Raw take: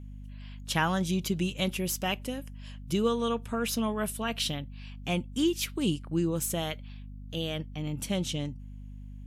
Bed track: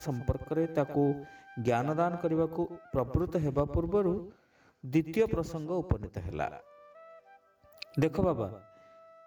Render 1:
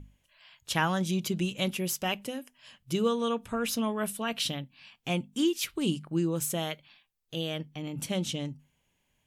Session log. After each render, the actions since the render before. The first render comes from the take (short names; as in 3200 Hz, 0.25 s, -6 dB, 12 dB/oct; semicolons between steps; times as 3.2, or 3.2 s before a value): notches 50/100/150/200/250 Hz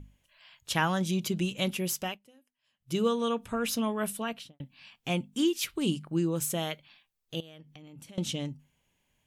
2–2.97 dip -23 dB, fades 0.19 s; 4.17–4.6 studio fade out; 7.4–8.18 compressor 8:1, threshold -46 dBFS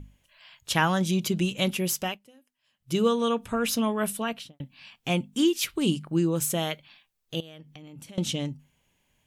gain +4 dB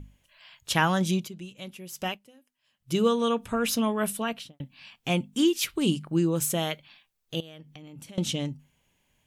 1.14–2.07 dip -15 dB, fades 0.15 s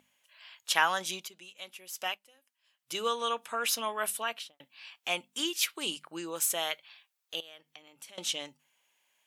HPF 780 Hz 12 dB/oct